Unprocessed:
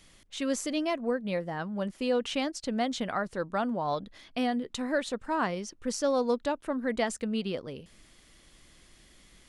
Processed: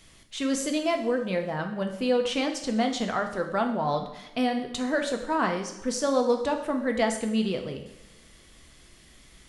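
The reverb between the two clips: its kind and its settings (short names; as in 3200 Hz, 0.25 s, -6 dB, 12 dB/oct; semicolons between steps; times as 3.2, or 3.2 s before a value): two-slope reverb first 0.73 s, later 2.2 s, from -18 dB, DRR 4 dB; gain +2.5 dB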